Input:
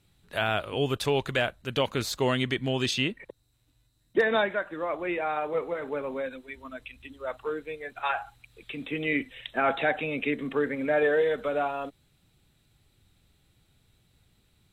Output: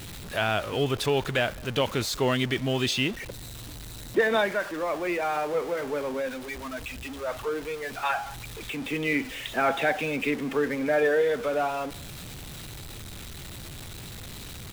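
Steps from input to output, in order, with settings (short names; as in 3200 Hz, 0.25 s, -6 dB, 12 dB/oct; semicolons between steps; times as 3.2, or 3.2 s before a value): zero-crossing step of -34.5 dBFS; speakerphone echo 0.2 s, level -23 dB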